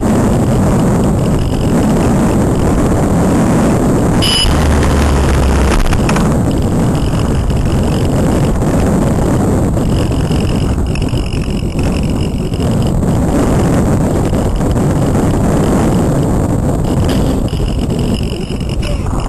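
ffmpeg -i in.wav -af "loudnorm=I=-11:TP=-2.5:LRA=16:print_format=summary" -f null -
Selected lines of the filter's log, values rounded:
Input Integrated:    -13.0 LUFS
Input True Peak:      -4.1 dBTP
Input LRA:             3.8 LU
Input Threshold:     -23.0 LUFS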